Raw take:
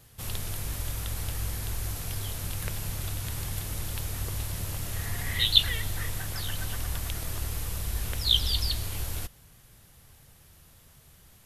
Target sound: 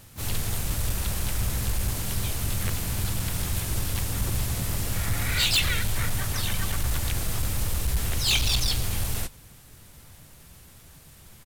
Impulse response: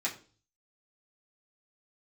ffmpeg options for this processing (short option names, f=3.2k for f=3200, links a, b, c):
-filter_complex "[0:a]asplit=4[a][b][c][d];[b]asetrate=33038,aresample=44100,atempo=1.33484,volume=-2dB[e];[c]asetrate=52444,aresample=44100,atempo=0.840896,volume=-2dB[f];[d]asetrate=88200,aresample=44100,atempo=0.5,volume=-9dB[g];[a][e][f][g]amix=inputs=4:normalize=0,volume=21dB,asoftclip=hard,volume=-21dB,volume=2dB"